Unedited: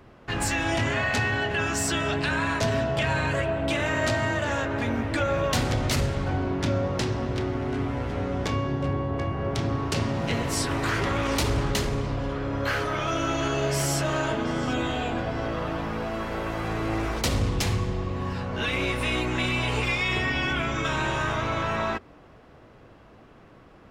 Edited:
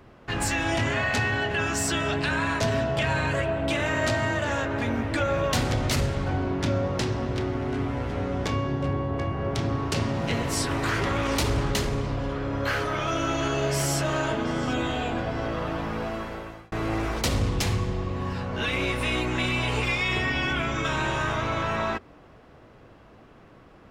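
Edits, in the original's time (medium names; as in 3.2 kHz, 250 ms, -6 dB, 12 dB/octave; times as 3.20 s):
16.07–16.72 s: fade out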